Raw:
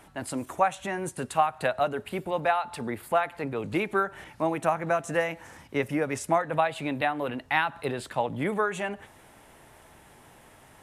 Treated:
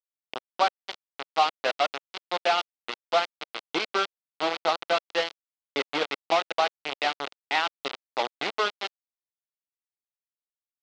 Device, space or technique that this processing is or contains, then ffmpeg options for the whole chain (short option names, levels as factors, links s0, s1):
hand-held game console: -af "acrusher=bits=3:mix=0:aa=0.000001,highpass=480,equalizer=f=590:t=q:w=4:g=-4,equalizer=f=990:t=q:w=4:g=-5,equalizer=f=1700:t=q:w=4:g=-9,equalizer=f=2400:t=q:w=4:g=-3,lowpass=f=4300:w=0.5412,lowpass=f=4300:w=1.3066,volume=1.5"